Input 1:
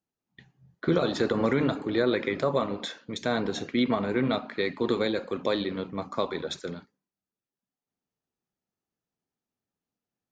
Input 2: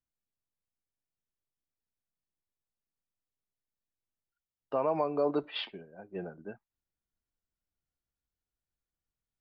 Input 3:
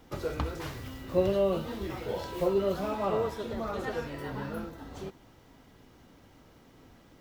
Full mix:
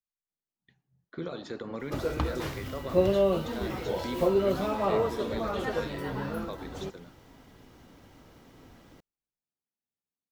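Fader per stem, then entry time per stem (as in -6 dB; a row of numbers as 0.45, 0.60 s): -12.5, -12.0, +2.5 dB; 0.30, 0.00, 1.80 s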